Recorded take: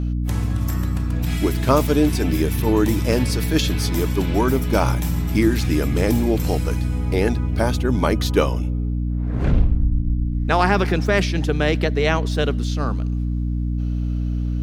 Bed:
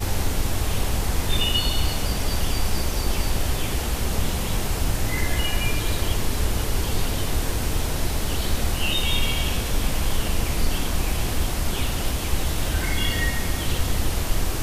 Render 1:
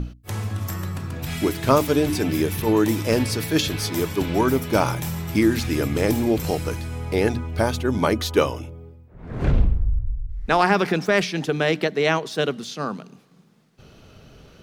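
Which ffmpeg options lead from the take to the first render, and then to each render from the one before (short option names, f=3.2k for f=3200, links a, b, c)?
-af "bandreject=f=60:t=h:w=6,bandreject=f=120:t=h:w=6,bandreject=f=180:t=h:w=6,bandreject=f=240:t=h:w=6,bandreject=f=300:t=h:w=6"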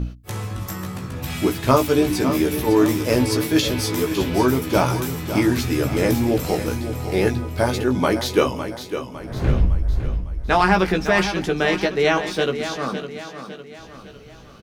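-filter_complex "[0:a]asplit=2[a][b];[b]adelay=16,volume=-4.5dB[c];[a][c]amix=inputs=2:normalize=0,asplit=2[d][e];[e]aecho=0:1:556|1112|1668|2224|2780:0.316|0.145|0.0669|0.0308|0.0142[f];[d][f]amix=inputs=2:normalize=0"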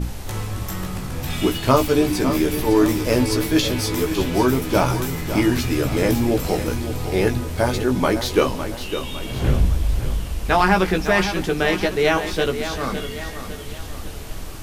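-filter_complex "[1:a]volume=-9.5dB[a];[0:a][a]amix=inputs=2:normalize=0"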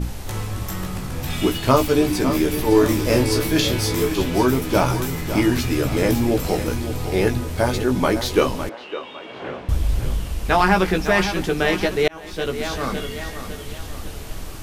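-filter_complex "[0:a]asettb=1/sr,asplit=3[a][b][c];[a]atrim=end=2.694[d];[b]atrim=start=2.69:end=4.12,asetpts=PTS-STARTPTS,afade=t=in:d=0.004:c=qsin,afade=t=out:st=1.426:d=0.004:c=qsin,asplit=2[e][f];[f]adelay=30,volume=-5.5dB[g];[e][g]amix=inputs=2:normalize=0,atrim=end_sample=63063[h];[c]atrim=start=4.116[i];[d][h]acrossfade=d=0.004:c1=hsin:c2=qsin[j];[j][i]acrossfade=d=0.004:c1=qsin:c2=hsin,asettb=1/sr,asplit=3[k][l][m];[k]atrim=end=8.694[n];[l]atrim=start=8.69:end=9.69,asetpts=PTS-STARTPTS,afade=t=in:d=0.004:c=qsin,afade=t=out:st=0.996:d=0.004:c=qsin,highpass=450,lowpass=2.3k[o];[m]atrim=start=9.686[p];[n][o]acrossfade=d=0.004:c1=hsin:c2=qsin[q];[q][p]acrossfade=d=0.004:c1=qsin:c2=hsin,asplit=2[r][s];[r]atrim=end=12.08,asetpts=PTS-STARTPTS,afade=t=out:st=12.076:d=0.004:c=hsin[t];[s]atrim=start=12.08,asetpts=PTS-STARTPTS,afade=t=in:d=0.57[u];[t][u]concat=n=2:v=0:a=1"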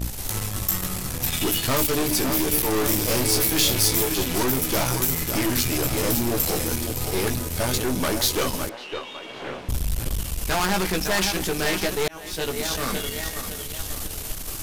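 -af "aeval=exprs='(tanh(11.2*val(0)+0.6)-tanh(0.6))/11.2':c=same,crystalizer=i=3:c=0"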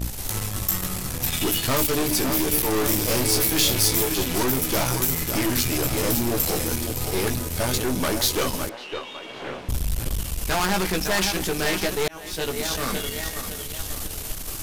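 -af anull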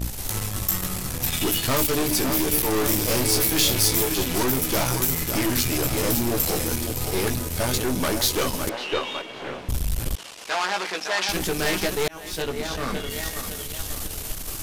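-filter_complex "[0:a]asettb=1/sr,asplit=3[a][b][c];[a]atrim=end=8.674[d];[b]atrim=start=8.67:end=9.22,asetpts=PTS-STARTPTS,afade=t=in:d=0.004:c=qsin,afade=t=out:st=0.546:d=0.004:c=qsin,acontrast=65[e];[c]atrim=start=9.216[f];[d][e]acrossfade=d=0.004:c1=hsin:c2=qsin[g];[g][f]acrossfade=d=0.004:c1=qsin:c2=hsin,asettb=1/sr,asplit=3[h][i][j];[h]atrim=end=10.154[k];[i]atrim=start=10.15:end=11.29,asetpts=PTS-STARTPTS,afade=t=in:d=0.004:c=qsin,afade=t=out:st=1.136:d=0.004:c=qsin,highpass=550,lowpass=5.5k[l];[j]atrim=start=11.286[m];[k][l]acrossfade=d=0.004:c1=hsin:c2=qsin[n];[n][m]acrossfade=d=0.004:c1=qsin:c2=hsin,asettb=1/sr,asplit=3[o][p][q];[o]atrim=end=12.424[r];[p]atrim=start=12.42:end=13.1,asetpts=PTS-STARTPTS,afade=t=in:d=0.004:c=qsin,afade=t=out:st=0.676:d=0.004:c=qsin,lowpass=f=2.9k:p=1[s];[q]atrim=start=13.096[t];[r][s]acrossfade=d=0.004:c1=hsin:c2=qsin[u];[u][t]acrossfade=d=0.004:c1=qsin:c2=hsin"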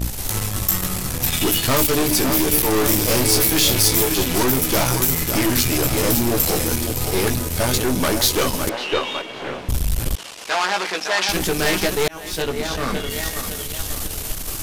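-af "volume=4.5dB,alimiter=limit=-3dB:level=0:latency=1"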